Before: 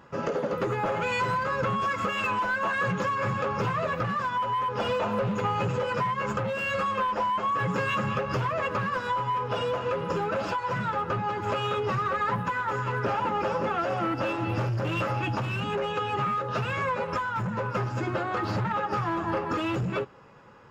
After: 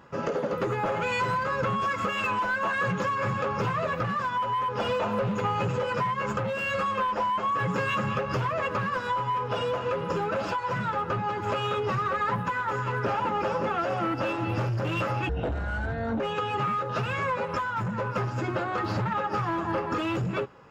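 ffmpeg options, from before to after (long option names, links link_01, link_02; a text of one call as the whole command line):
ffmpeg -i in.wav -filter_complex "[0:a]asplit=3[link_01][link_02][link_03];[link_01]atrim=end=15.294[link_04];[link_02]atrim=start=15.29:end=15.79,asetpts=PTS-STARTPTS,asetrate=24255,aresample=44100[link_05];[link_03]atrim=start=15.786[link_06];[link_04][link_05]acrossfade=duration=0.004:curve1=hsin:curve2=hsin[link_07];[link_07][link_06]acrossfade=duration=0.004:curve1=hsin:curve2=hsin" out.wav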